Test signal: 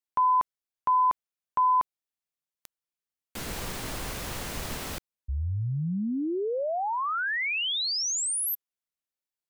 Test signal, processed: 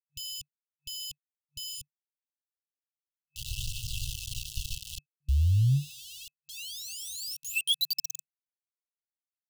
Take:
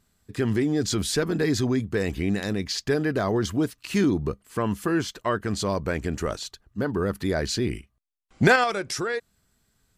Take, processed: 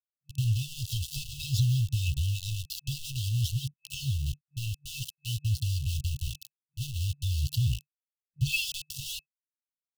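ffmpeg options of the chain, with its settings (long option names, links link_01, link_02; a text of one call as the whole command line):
ffmpeg -i in.wav -filter_complex "[0:a]acrossover=split=2400[link_01][link_02];[link_02]asoftclip=type=tanh:threshold=-31.5dB[link_03];[link_01][link_03]amix=inputs=2:normalize=0,lowpass=6600,equalizer=frequency=2600:width_type=o:width=0.46:gain=3,aphaser=in_gain=1:out_gain=1:delay=1.6:decay=0.54:speed=0.53:type=triangular,aeval=exprs='val(0)*gte(abs(val(0)),0.0376)':channel_layout=same,afftfilt=real='re*(1-between(b*sr/4096,150,2600))':imag='im*(1-between(b*sr/4096,150,2600))':win_size=4096:overlap=0.75,adynamicequalizer=threshold=0.0126:dfrequency=1600:dqfactor=0.7:tfrequency=1600:tqfactor=0.7:attack=5:release=100:ratio=0.375:range=1.5:mode=boostabove:tftype=highshelf" out.wav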